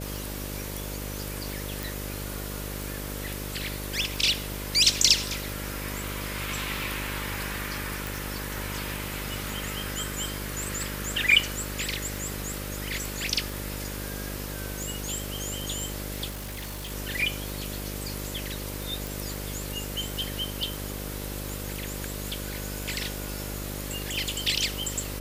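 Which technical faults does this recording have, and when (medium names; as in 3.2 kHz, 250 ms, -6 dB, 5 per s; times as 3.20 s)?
buzz 50 Hz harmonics 12 -36 dBFS
tick 45 rpm
1.83 s: pop
8.07 s: pop
16.29–16.92 s: clipped -32.5 dBFS
19.07 s: pop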